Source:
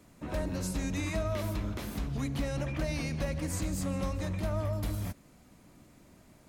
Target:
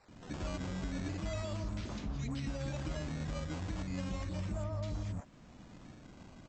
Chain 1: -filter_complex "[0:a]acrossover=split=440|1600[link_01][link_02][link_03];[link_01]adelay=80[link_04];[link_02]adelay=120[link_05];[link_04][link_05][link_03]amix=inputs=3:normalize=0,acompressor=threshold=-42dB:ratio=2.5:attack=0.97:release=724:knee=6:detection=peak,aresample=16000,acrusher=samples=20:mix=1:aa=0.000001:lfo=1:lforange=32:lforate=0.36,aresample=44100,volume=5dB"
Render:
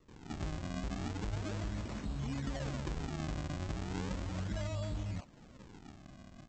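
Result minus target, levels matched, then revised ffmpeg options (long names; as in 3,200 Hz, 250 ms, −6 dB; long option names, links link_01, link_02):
sample-and-hold swept by an LFO: distortion +9 dB
-filter_complex "[0:a]acrossover=split=440|1600[link_01][link_02][link_03];[link_01]adelay=80[link_04];[link_02]adelay=120[link_05];[link_04][link_05][link_03]amix=inputs=3:normalize=0,acompressor=threshold=-42dB:ratio=2.5:attack=0.97:release=724:knee=6:detection=peak,aresample=16000,acrusher=samples=5:mix=1:aa=0.000001:lfo=1:lforange=8:lforate=0.36,aresample=44100,volume=5dB"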